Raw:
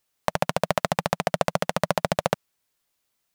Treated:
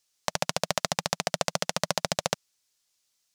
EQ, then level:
parametric band 5,800 Hz +14.5 dB 1.9 octaves
−7.0 dB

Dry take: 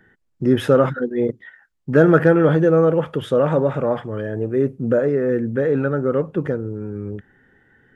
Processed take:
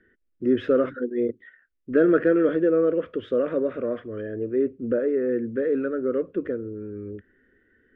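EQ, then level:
low-pass filter 2,600 Hz 12 dB per octave
high-frequency loss of the air 61 metres
phaser with its sweep stopped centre 350 Hz, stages 4
−3.0 dB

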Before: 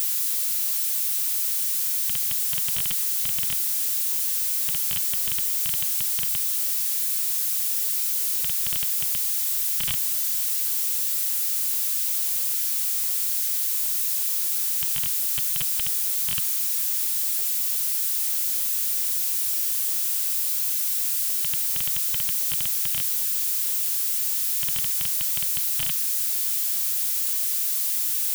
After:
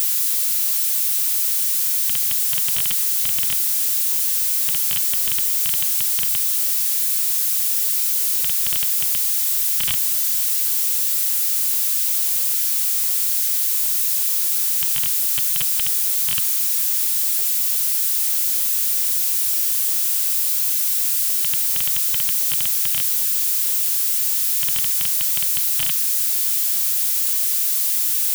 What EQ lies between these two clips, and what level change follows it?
low-shelf EQ 410 Hz −4.5 dB
+5.0 dB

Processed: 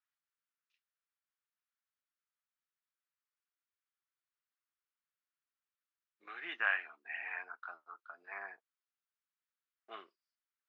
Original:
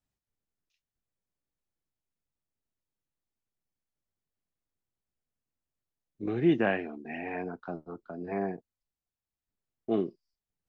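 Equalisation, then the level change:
four-pole ladder band-pass 1,500 Hz, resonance 50%
tilt shelving filter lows −7.5 dB, about 1,300 Hz
+8.5 dB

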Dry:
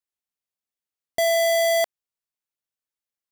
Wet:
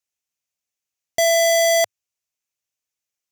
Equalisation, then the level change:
graphic EQ with 15 bands 100 Hz +7 dB, 630 Hz +3 dB, 2,500 Hz +7 dB, 6,300 Hz +11 dB, 16,000 Hz +4 dB
0.0 dB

